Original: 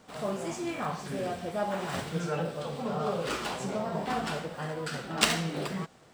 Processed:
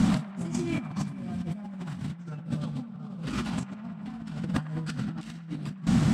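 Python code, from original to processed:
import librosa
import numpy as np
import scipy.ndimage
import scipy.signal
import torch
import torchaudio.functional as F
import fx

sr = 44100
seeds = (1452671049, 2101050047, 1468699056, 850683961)

p1 = scipy.signal.sosfilt(scipy.signal.butter(2, 11000.0, 'lowpass', fs=sr, output='sos'), x)
p2 = fx.low_shelf_res(p1, sr, hz=310.0, db=12.5, q=3.0)
p3 = fx.over_compress(p2, sr, threshold_db=-41.0, ratio=-1.0)
p4 = p3 + fx.echo_wet_bandpass(p3, sr, ms=103, feedback_pct=81, hz=1200.0, wet_db=-14.5, dry=0)
y = F.gain(torch.from_numpy(p4), 7.0).numpy()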